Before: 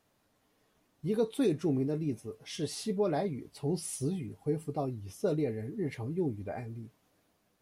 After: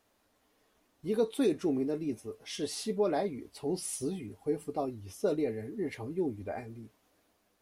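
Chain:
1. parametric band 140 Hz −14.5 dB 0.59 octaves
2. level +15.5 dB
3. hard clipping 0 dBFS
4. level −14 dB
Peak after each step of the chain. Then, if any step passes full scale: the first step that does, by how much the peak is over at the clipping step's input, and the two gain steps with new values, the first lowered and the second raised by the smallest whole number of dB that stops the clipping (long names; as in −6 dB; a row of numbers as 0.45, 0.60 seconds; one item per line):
−19.0, −3.5, −3.5, −17.5 dBFS
no step passes full scale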